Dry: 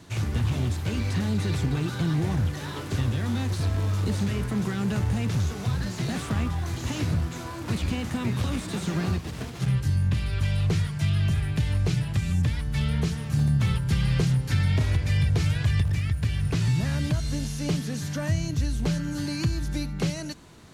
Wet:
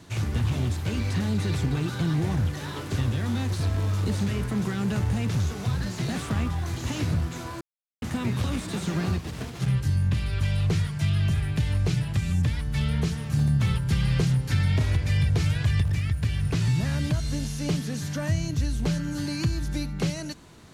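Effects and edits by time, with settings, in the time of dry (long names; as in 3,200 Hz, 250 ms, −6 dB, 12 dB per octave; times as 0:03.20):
0:07.61–0:08.02: silence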